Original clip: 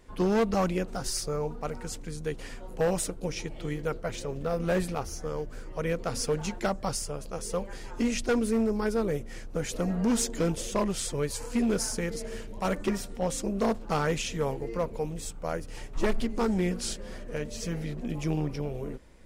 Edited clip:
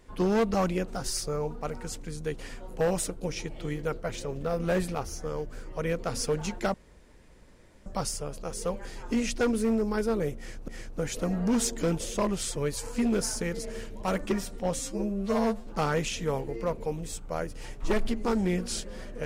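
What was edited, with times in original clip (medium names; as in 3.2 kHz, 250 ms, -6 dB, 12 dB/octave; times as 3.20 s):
6.74 s: insert room tone 1.12 s
9.25–9.56 s: loop, 2 plays
13.36–13.80 s: stretch 2×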